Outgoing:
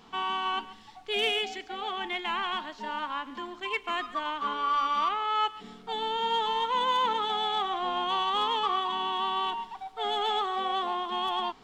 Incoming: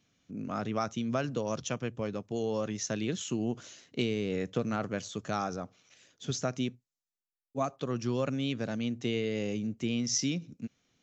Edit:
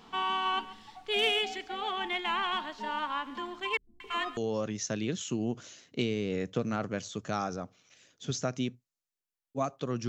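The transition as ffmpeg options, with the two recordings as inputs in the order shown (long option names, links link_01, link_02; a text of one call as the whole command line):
ffmpeg -i cue0.wav -i cue1.wav -filter_complex "[0:a]asettb=1/sr,asplit=3[link_01][link_02][link_03];[link_01]atrim=end=3.774[link_04];[link_02]atrim=start=3.77:end=4.37,asetpts=PTS-STARTPTS,afade=type=in:duration=0.004:curve=qsin,afade=type=out:start_time=0.596:duration=0.004:curve=qsin,acrossover=split=160|930[link_05][link_06][link_07];[link_07]adelay=230[link_08];[link_06]adelay=270[link_09];[link_05][link_09][link_08]amix=inputs=3:normalize=0,atrim=end_sample=26460[link_10];[link_03]atrim=start=4.366[link_11];[link_04][link_10]acrossfade=duration=0.004:curve1=hsin:curve2=qsin[link_12];[link_12][link_11]acrossfade=duration=0.004:curve1=qsin:curve2=hsin,apad=whole_dur=10.08,atrim=end=10.08,atrim=end=4.372[link_13];[1:a]atrim=start=2.368:end=8.08[link_14];[link_13][link_14]acrossfade=duration=0.004:curve1=hsin:curve2=hsin" out.wav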